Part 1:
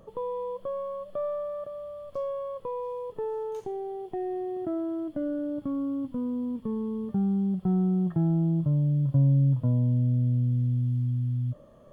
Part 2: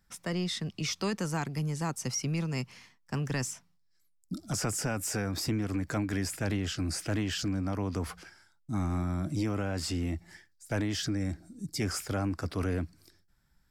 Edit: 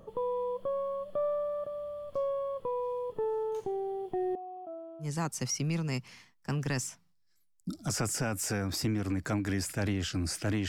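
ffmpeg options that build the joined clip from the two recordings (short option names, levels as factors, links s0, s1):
-filter_complex "[0:a]asettb=1/sr,asplit=3[s0][s1][s2];[s0]atrim=end=4.354[s3];[s1]atrim=start=4.35:end=5.09,asetpts=PTS-STARTPTS,afade=t=in:d=0.004:c=qsin,afade=t=out:st=0.736:d=0.004:c=qsin,asplit=3[s4][s5][s6];[s4]bandpass=f=730:t=q:w=8,volume=1[s7];[s5]bandpass=f=1090:t=q:w=8,volume=0.501[s8];[s6]bandpass=f=2440:t=q:w=8,volume=0.355[s9];[s7][s8][s9]amix=inputs=3:normalize=0[s10];[s2]atrim=start=5.086[s11];[s3][s10]acrossfade=d=0.004:c1=hsin:c2=qsin[s12];[s12][s11]acrossfade=d=0.004:c1=qsin:c2=hsin,apad=whole_dur=10.68,atrim=end=10.68,atrim=end=5.09,asetpts=PTS-STARTPTS[s13];[1:a]atrim=start=1.63:end=7.32,asetpts=PTS-STARTPTS[s14];[s13][s14]acrossfade=d=0.1:c1=tri:c2=tri"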